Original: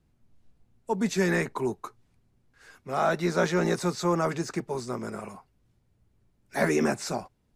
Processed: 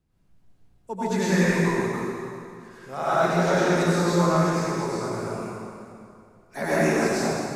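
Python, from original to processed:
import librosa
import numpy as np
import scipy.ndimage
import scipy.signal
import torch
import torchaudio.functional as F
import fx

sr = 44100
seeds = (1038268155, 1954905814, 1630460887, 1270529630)

y = fx.rev_plate(x, sr, seeds[0], rt60_s=2.5, hf_ratio=0.8, predelay_ms=80, drr_db=-10.0)
y = y * 10.0 ** (-5.5 / 20.0)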